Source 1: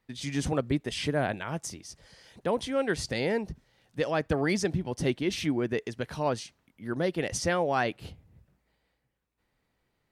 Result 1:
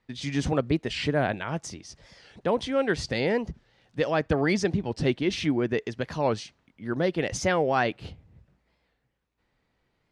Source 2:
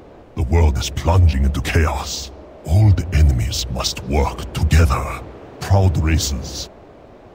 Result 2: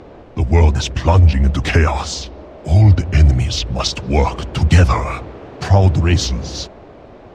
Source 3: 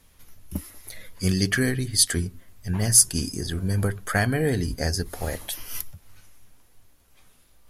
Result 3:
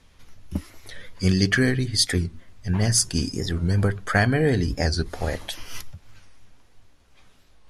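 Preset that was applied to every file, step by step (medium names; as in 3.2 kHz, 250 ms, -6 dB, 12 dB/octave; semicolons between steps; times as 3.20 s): low-pass 5.8 kHz 12 dB/octave; warped record 45 rpm, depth 160 cents; trim +3 dB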